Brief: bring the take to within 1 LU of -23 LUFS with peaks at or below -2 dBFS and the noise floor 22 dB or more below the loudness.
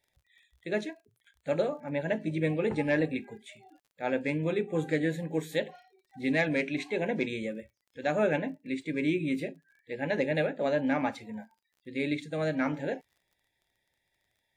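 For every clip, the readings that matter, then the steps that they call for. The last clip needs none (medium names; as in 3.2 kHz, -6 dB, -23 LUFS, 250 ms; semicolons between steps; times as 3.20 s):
tick rate 26 per s; loudness -31.0 LUFS; peak level -15.5 dBFS; loudness target -23.0 LUFS
-> de-click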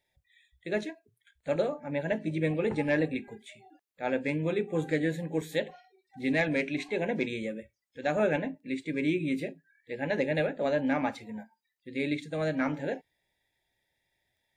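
tick rate 0 per s; loudness -31.0 LUFS; peak level -15.5 dBFS; loudness target -23.0 LUFS
-> trim +8 dB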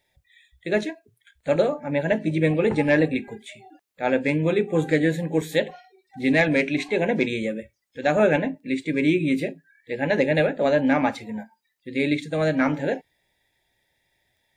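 loudness -23.0 LUFS; peak level -7.5 dBFS; noise floor -73 dBFS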